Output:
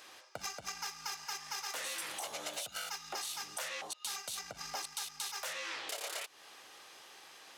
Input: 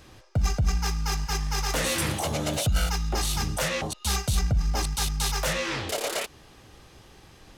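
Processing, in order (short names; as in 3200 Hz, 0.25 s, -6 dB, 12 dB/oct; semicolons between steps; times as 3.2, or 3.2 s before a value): Bessel high-pass 890 Hz, order 2; compressor 6:1, threshold -40 dBFS, peak gain reduction 14 dB; gain +1.5 dB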